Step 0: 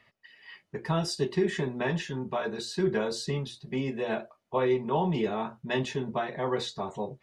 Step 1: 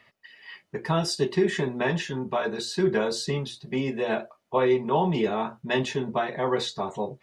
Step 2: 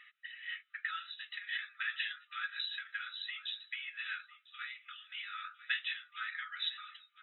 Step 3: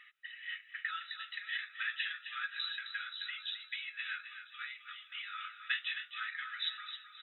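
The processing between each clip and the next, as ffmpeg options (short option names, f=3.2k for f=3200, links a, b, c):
-af "lowshelf=f=120:g=-6.5,volume=4.5dB"
-af "aecho=1:1:1000:0.0708,acompressor=threshold=-29dB:ratio=6,afftfilt=real='re*between(b*sr/4096,1200,4000)':imag='im*between(b*sr/4096,1200,4000)':win_size=4096:overlap=0.75,volume=2dB"
-af "aecho=1:1:263|526|789|1052:0.335|0.111|0.0365|0.012"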